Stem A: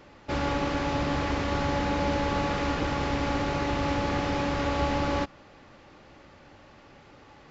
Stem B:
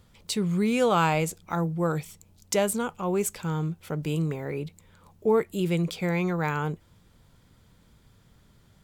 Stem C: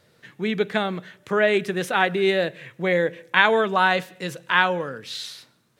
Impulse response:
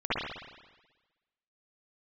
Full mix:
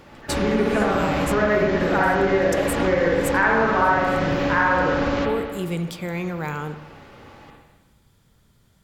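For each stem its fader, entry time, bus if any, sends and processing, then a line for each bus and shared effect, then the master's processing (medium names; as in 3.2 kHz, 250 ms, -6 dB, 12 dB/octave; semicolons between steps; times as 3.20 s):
+2.0 dB, 0.00 s, send -9 dB, none
-2.0 dB, 0.00 s, send -21 dB, peaking EQ 13 kHz +4.5 dB 1.6 oct
0.0 dB, 0.00 s, send -3.5 dB, inverse Chebyshev low-pass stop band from 5.8 kHz, stop band 60 dB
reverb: on, RT60 1.2 s, pre-delay 53 ms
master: compression 2.5:1, threshold -19 dBFS, peak gain reduction 9 dB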